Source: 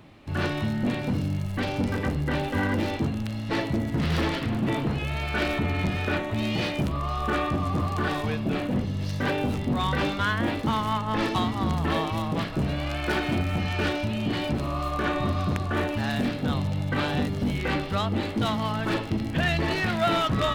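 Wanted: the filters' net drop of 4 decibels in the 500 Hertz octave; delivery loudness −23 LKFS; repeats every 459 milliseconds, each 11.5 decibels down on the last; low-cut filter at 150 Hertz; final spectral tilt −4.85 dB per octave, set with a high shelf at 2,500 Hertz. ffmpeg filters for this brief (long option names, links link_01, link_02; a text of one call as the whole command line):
ffmpeg -i in.wav -af "highpass=150,equalizer=frequency=500:width_type=o:gain=-5,highshelf=frequency=2500:gain=-7.5,aecho=1:1:459|918|1377:0.266|0.0718|0.0194,volume=7dB" out.wav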